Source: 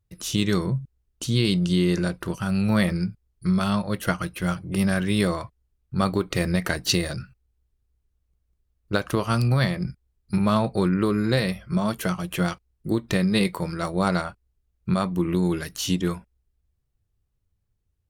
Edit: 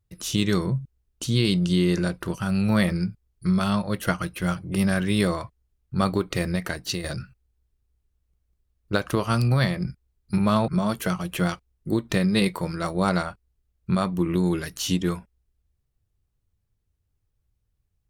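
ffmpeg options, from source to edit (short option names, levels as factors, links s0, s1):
-filter_complex "[0:a]asplit=3[s0][s1][s2];[s0]atrim=end=7.04,asetpts=PTS-STARTPTS,afade=t=out:st=6.14:d=0.9:silence=0.375837[s3];[s1]atrim=start=7.04:end=10.682,asetpts=PTS-STARTPTS,afade=t=in:d=0.004:c=hsin:silence=0.375837[s4];[s2]atrim=start=11.668[s5];[s3][s4]concat=n=2:v=0:a=1[s6];[s6][s5]acrossfade=d=0.004:c1=hsin:c2=hsin"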